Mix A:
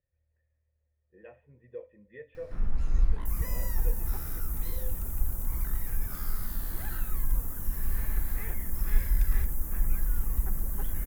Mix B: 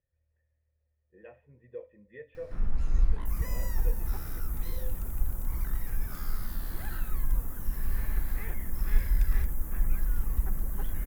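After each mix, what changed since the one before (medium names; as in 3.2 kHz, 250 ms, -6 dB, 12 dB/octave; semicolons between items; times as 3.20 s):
second sound -5.5 dB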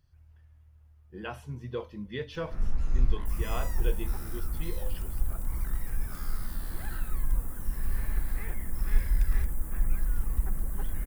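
speech: remove cascade formant filter e; second sound: remove rippled EQ curve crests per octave 0.79, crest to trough 8 dB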